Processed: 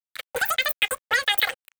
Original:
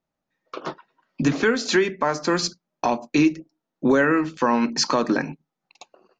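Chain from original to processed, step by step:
change of speed 3.46×
phaser with its sweep stopped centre 2,400 Hz, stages 4
dead-zone distortion −44 dBFS
level +4 dB

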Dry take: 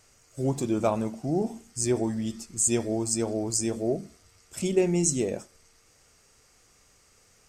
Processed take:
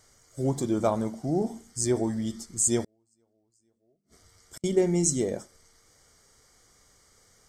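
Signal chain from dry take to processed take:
Butterworth band-reject 2,600 Hz, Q 4.3
0:02.83–0:04.64: gate with flip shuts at −29 dBFS, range −42 dB

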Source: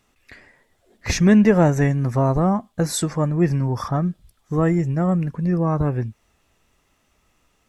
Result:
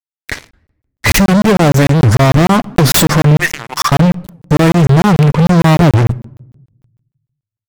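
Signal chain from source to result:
stylus tracing distortion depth 0.18 ms
0:03.38–0:03.92: Chebyshev high-pass filter 1,700 Hz, order 2
downward compressor 6 to 1, threshold −22 dBFS, peak gain reduction 12 dB
fuzz pedal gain 35 dB, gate −44 dBFS
rectangular room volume 2,300 cubic metres, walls furnished, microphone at 0.37 metres
regular buffer underruns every 0.15 s, samples 1,024, zero, from 0:00.52
wow of a warped record 78 rpm, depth 250 cents
level +6.5 dB

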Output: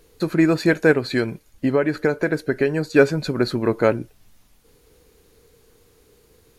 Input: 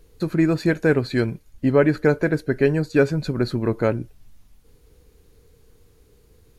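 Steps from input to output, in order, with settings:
low-shelf EQ 170 Hz −12 dB
0:00.91–0:02.96: downward compressor 4 to 1, threshold −21 dBFS, peak gain reduction 8 dB
level +5 dB

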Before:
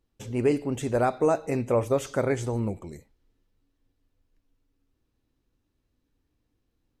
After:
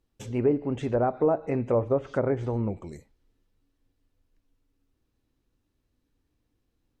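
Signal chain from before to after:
treble cut that deepens with the level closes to 990 Hz, closed at −20.5 dBFS

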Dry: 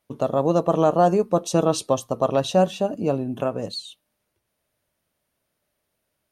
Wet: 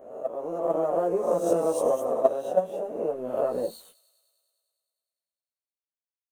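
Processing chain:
peak hold with a rise ahead of every peak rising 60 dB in 0.92 s
in parallel at −5.5 dB: soft clipping −14 dBFS, distortion −12 dB
on the sum: downward compressor 10 to 1, threshold −15 dBFS, peak gain reduction 6.5 dB
low-shelf EQ 340 Hz −7.5 dB
dead-zone distortion −38 dBFS
multi-voice chorus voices 6, 0.98 Hz, delay 15 ms, depth 3 ms
noise gate −20 dBFS, range −18 dB
drawn EQ curve 130 Hz 0 dB, 490 Hz +14 dB, 3,000 Hz −7 dB, 4,300 Hz −14 dB, 10,000 Hz +6 dB
delay with a high-pass on its return 101 ms, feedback 76%, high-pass 3,600 Hz, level −16 dB
automatic gain control gain up to 16 dB
level −6 dB

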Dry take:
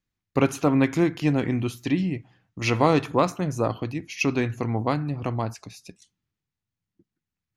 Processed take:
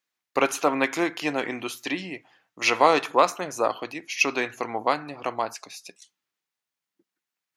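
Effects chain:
high-pass filter 570 Hz 12 dB per octave
level +5 dB

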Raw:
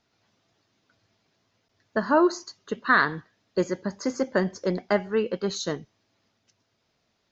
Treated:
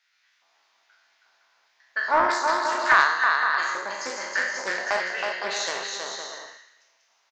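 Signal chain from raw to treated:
peak hold with a decay on every bin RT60 0.93 s
dynamic equaliser 970 Hz, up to −6 dB, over −31 dBFS, Q 0.88
auto-filter high-pass square 1.2 Hz 900–1,800 Hz
bouncing-ball delay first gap 320 ms, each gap 0.6×, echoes 5
highs frequency-modulated by the lows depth 0.17 ms

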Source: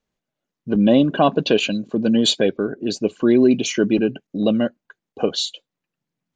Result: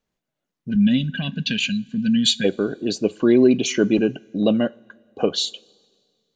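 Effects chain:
coupled-rooms reverb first 0.29 s, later 2 s, from −18 dB, DRR 17.5 dB
gain on a spectral selection 0:00.70–0:02.44, 270–1,500 Hz −24 dB

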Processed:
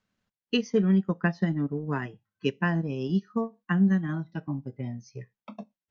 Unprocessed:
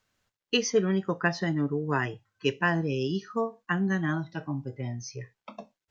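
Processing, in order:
parametric band 200 Hz +11 dB 0.8 octaves
transient designer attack +3 dB, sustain −7 dB
high-frequency loss of the air 63 metres
level −5 dB

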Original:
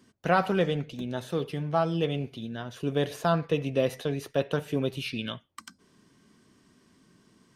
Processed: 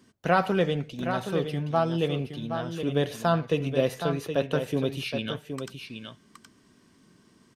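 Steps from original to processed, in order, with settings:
single-tap delay 770 ms −8 dB
level +1 dB

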